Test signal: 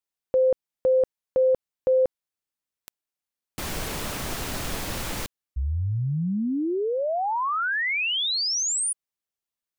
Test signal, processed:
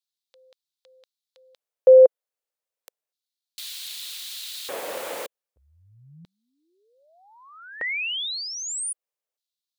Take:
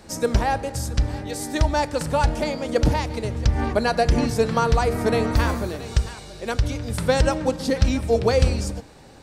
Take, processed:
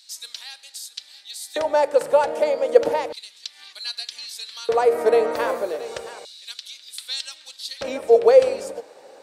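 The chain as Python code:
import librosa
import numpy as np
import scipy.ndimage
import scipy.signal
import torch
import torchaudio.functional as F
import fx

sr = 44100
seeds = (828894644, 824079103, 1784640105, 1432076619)

y = fx.filter_lfo_highpass(x, sr, shape='square', hz=0.32, low_hz=510.0, high_hz=3900.0, q=3.6)
y = fx.dynamic_eq(y, sr, hz=5500.0, q=1.5, threshold_db=-43.0, ratio=4.0, max_db=-6)
y = F.gain(torch.from_numpy(y), -2.0).numpy()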